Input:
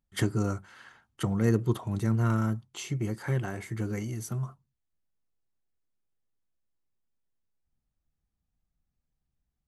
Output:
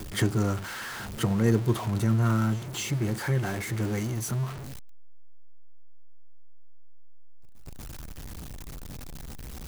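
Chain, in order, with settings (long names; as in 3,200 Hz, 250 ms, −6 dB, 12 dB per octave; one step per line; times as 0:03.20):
converter with a step at zero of −33.5 dBFS
backwards echo 238 ms −19 dB
level +1 dB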